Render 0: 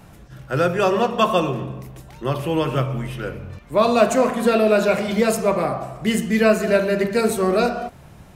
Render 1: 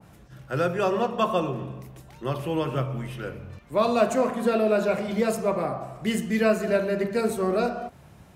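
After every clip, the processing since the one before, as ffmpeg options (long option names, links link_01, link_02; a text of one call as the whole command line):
ffmpeg -i in.wav -af "highpass=53,adynamicequalizer=threshold=0.0251:dfrequency=1600:dqfactor=0.7:tfrequency=1600:tqfactor=0.7:attack=5:release=100:ratio=0.375:range=2.5:mode=cutabove:tftype=highshelf,volume=-5.5dB" out.wav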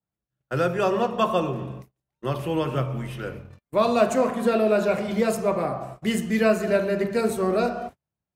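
ffmpeg -i in.wav -af "agate=range=-40dB:threshold=-38dB:ratio=16:detection=peak,volume=1.5dB" out.wav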